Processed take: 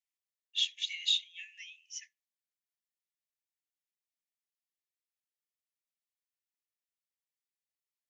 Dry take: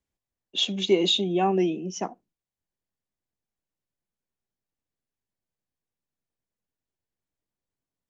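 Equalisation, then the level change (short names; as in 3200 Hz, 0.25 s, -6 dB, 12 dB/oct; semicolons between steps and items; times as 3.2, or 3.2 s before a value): brick-wall FIR high-pass 1700 Hz; -5.0 dB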